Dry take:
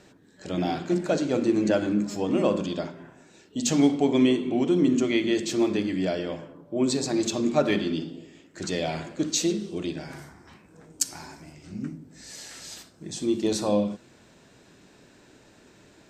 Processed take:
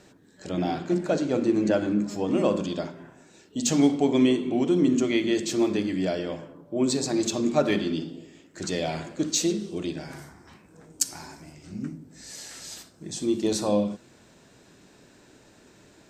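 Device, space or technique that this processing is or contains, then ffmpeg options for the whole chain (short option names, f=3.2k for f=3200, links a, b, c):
exciter from parts: -filter_complex "[0:a]asettb=1/sr,asplit=3[a][b][c];[a]atrim=end=0.494[d];[b]atrim=start=0.49:end=2.28,asetpts=PTS-STARTPTS,afade=t=in:d=0.004:c=qsin,afade=t=out:st=1.786:d=0.004:c=qsin,highshelf=f=4.6k:g=-6[e];[c]atrim=start=2.276[f];[d][e]acrossfade=d=0.004:c1=hsin:c2=qsin[g];[g][f]acrossfade=d=0.004:c1=qsin:c2=hsin,asplit=2[h][i];[i]highpass=f=4.6k:p=1,asoftclip=type=tanh:threshold=-23dB,highpass=2.3k,volume=-8.5dB[j];[h][j]amix=inputs=2:normalize=0"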